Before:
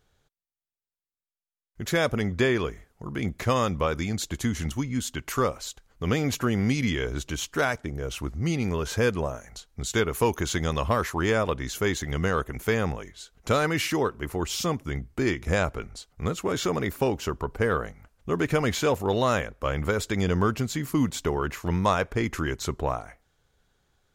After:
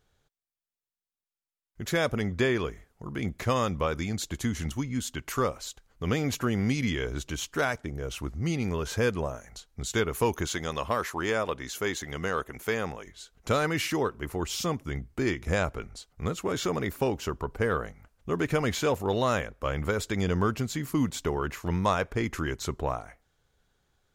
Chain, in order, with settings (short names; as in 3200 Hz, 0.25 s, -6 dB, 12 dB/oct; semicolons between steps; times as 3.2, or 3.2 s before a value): 10.46–13.07 low shelf 180 Hz -11 dB; gain -2.5 dB